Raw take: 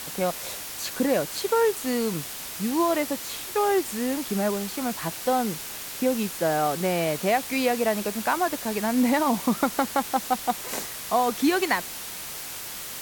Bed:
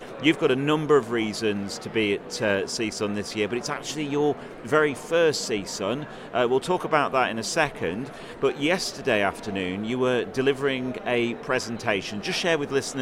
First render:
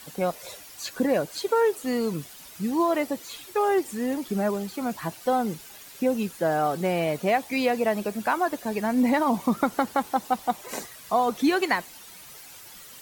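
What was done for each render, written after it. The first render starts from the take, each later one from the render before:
broadband denoise 12 dB, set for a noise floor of −36 dBFS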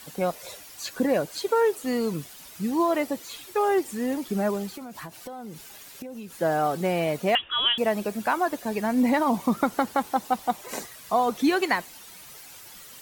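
0:04.73–0:06.41: downward compressor 20 to 1, threshold −34 dBFS
0:07.35–0:07.78: voice inversion scrambler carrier 3,600 Hz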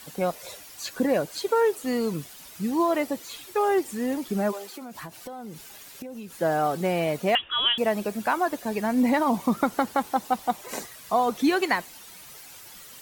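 0:04.51–0:04.92: high-pass filter 600 Hz → 150 Hz 24 dB per octave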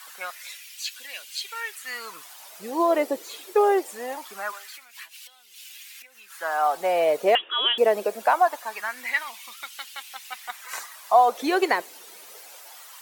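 auto-filter high-pass sine 0.23 Hz 400–2,900 Hz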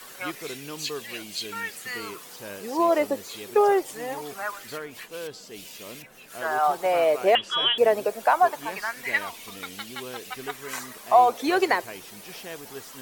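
mix in bed −16 dB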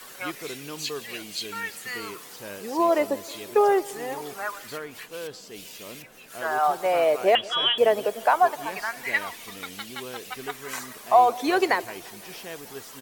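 repeating echo 172 ms, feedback 60%, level −22 dB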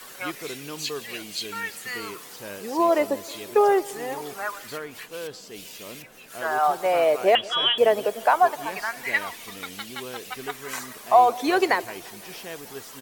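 level +1 dB

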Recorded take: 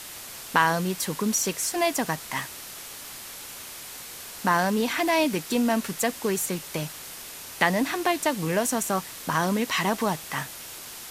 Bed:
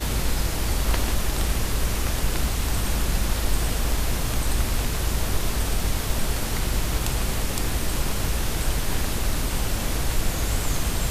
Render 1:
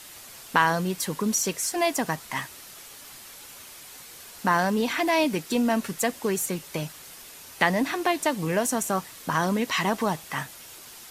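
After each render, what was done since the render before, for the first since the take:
broadband denoise 6 dB, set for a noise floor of −41 dBFS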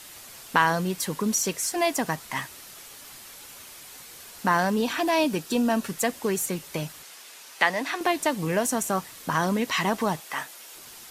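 0:04.76–0:05.86: notch filter 2,100 Hz, Q 6.3
0:07.03–0:08.01: meter weighting curve A
0:10.20–0:10.75: high-pass filter 350 Hz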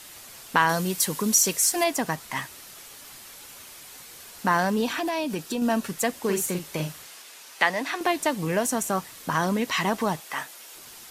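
0:00.69–0:01.84: high-shelf EQ 4,500 Hz +9 dB
0:04.86–0:05.62: downward compressor, threshold −24 dBFS
0:06.20–0:07.22: double-tracking delay 45 ms −6 dB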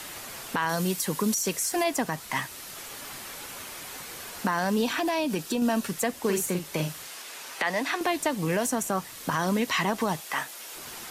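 brickwall limiter −15.5 dBFS, peak gain reduction 11 dB
multiband upward and downward compressor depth 40%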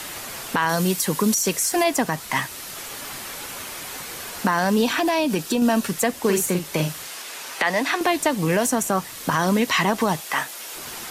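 level +6 dB

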